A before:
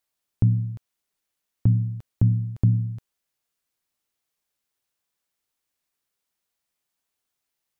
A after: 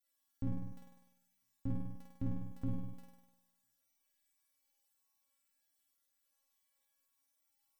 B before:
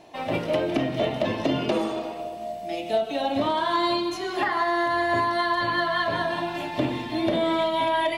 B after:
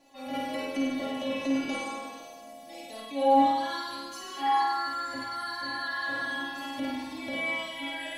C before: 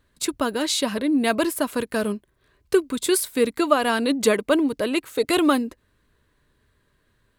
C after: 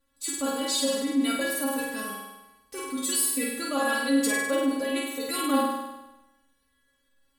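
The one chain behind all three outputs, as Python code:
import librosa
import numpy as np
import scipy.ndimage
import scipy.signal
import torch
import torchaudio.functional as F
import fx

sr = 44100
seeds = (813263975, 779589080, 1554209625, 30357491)

y = fx.high_shelf(x, sr, hz=5700.0, db=7.0)
y = fx.stiff_resonator(y, sr, f0_hz=270.0, decay_s=0.38, stiffness=0.002)
y = fx.room_flutter(y, sr, wall_m=8.6, rt60_s=1.0)
y = fx.transient(y, sr, attack_db=-4, sustain_db=1)
y = y * librosa.db_to_amplitude(8.0)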